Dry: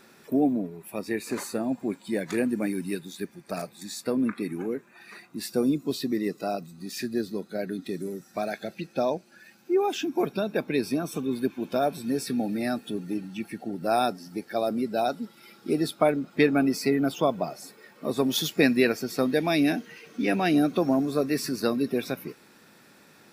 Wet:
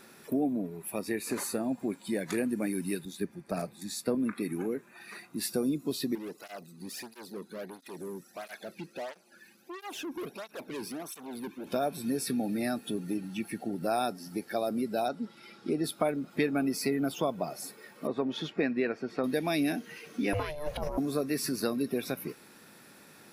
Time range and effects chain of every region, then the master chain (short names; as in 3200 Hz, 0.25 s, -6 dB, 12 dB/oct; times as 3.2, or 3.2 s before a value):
3.05–4.15 tilt -1.5 dB/oct + three-band expander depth 40%
6.15–11.67 tube stage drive 34 dB, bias 0.4 + tape flanging out of phase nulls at 1.5 Hz, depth 1.7 ms
15.08–15.84 dynamic EQ 3900 Hz, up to -4 dB, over -50 dBFS, Q 0.76 + LPF 6000 Hz
18.07–19.24 LPF 2100 Hz + low shelf 140 Hz -10 dB
20.33–20.98 bell 2000 Hz +8.5 dB 0.33 oct + negative-ratio compressor -26 dBFS, ratio -0.5 + ring modulator 300 Hz
whole clip: compressor 2:1, threshold -30 dBFS; bell 11000 Hz +8 dB 0.41 oct